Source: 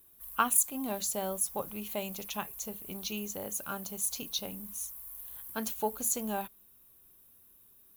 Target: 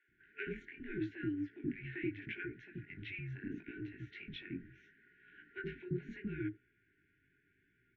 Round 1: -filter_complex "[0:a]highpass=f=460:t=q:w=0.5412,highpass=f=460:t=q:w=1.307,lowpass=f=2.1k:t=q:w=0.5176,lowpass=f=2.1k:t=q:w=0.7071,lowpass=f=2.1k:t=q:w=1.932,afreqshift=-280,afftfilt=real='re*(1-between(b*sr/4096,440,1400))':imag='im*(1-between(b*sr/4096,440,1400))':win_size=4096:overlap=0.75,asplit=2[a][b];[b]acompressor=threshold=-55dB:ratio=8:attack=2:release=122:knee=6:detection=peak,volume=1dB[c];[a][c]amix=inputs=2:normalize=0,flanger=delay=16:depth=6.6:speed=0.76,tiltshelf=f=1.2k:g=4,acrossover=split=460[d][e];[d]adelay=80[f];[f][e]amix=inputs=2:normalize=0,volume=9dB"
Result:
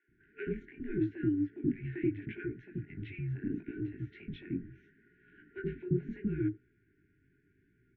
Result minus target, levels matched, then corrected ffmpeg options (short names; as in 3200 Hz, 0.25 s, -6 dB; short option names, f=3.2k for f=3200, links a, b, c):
1000 Hz band -8.0 dB
-filter_complex "[0:a]highpass=f=460:t=q:w=0.5412,highpass=f=460:t=q:w=1.307,lowpass=f=2.1k:t=q:w=0.5176,lowpass=f=2.1k:t=q:w=0.7071,lowpass=f=2.1k:t=q:w=1.932,afreqshift=-280,afftfilt=real='re*(1-between(b*sr/4096,440,1400))':imag='im*(1-between(b*sr/4096,440,1400))':win_size=4096:overlap=0.75,asplit=2[a][b];[b]acompressor=threshold=-55dB:ratio=8:attack=2:release=122:knee=6:detection=peak,volume=1dB[c];[a][c]amix=inputs=2:normalize=0,flanger=delay=16:depth=6.6:speed=0.76,tiltshelf=f=1.2k:g=-4.5,acrossover=split=460[d][e];[d]adelay=80[f];[f][e]amix=inputs=2:normalize=0,volume=9dB"